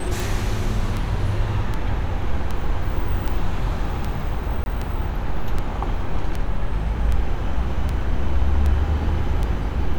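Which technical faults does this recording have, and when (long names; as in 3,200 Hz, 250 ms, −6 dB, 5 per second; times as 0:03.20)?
scratch tick 78 rpm
0:04.64–0:04.66: drop-out 21 ms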